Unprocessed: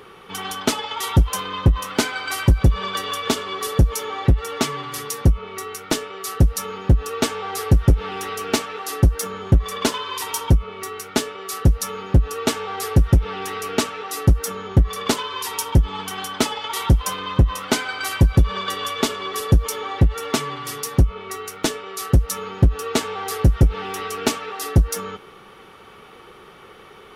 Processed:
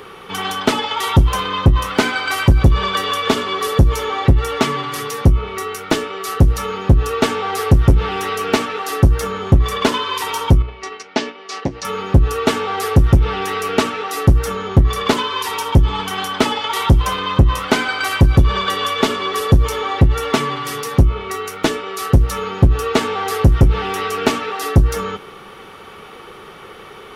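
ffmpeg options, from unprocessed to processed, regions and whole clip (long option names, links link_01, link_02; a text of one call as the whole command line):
ffmpeg -i in.wav -filter_complex "[0:a]asettb=1/sr,asplit=3[link_01][link_02][link_03];[link_01]atrim=end=10.624[link_04];[link_02]atrim=start=10.62:end=11.85,asetpts=PTS-STARTPTS,afade=type=in:duration=0.004:curve=qsin,afade=type=out:start_time=1.226:duration=0.004:curve=qsin,agate=range=-7dB:threshold=-33dB:ratio=16:release=100:detection=peak,volume=9.5dB,asoftclip=hard,volume=-9.5dB,highpass=260,equalizer=frequency=420:width_type=q:width=4:gain=-6,equalizer=frequency=1300:width_type=q:width=4:gain=-8,equalizer=frequency=3600:width_type=q:width=4:gain=-4,lowpass=frequency=5500:width=0.5412,lowpass=frequency=5500:width=1.3066[link_05];[link_03]atrim=start=11.846[link_06];[link_04][link_05]acrossfade=duration=0.004:curve1=hsin:curve2=qsin[link_07];[link_07][link_06]acrossfade=duration=0.004:curve1=qsin:curve2=hsin,acrossover=split=3600[link_08][link_09];[link_09]acompressor=threshold=-34dB:ratio=4:attack=1:release=60[link_10];[link_08][link_10]amix=inputs=2:normalize=0,bandreject=frequency=60:width_type=h:width=6,bandreject=frequency=120:width_type=h:width=6,bandreject=frequency=180:width_type=h:width=6,bandreject=frequency=240:width_type=h:width=6,bandreject=frequency=300:width_type=h:width=6,bandreject=frequency=360:width_type=h:width=6,acontrast=86" out.wav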